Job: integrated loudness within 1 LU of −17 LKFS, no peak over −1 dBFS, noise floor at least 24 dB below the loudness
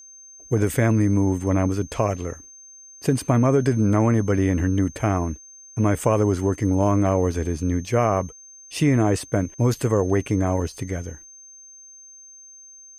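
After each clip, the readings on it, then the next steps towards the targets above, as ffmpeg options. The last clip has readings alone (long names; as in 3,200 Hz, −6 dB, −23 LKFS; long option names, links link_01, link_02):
interfering tone 6,300 Hz; level of the tone −43 dBFS; integrated loudness −22.0 LKFS; sample peak −5.5 dBFS; target loudness −17.0 LKFS
→ -af "bandreject=frequency=6300:width=30"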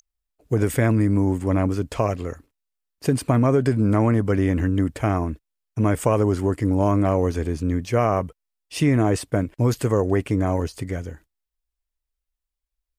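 interfering tone none found; integrated loudness −22.0 LKFS; sample peak −5.0 dBFS; target loudness −17.0 LKFS
→ -af "volume=5dB,alimiter=limit=-1dB:level=0:latency=1"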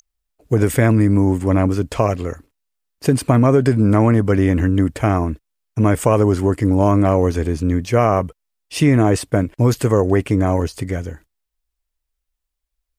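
integrated loudness −17.0 LKFS; sample peak −1.0 dBFS; background noise floor −79 dBFS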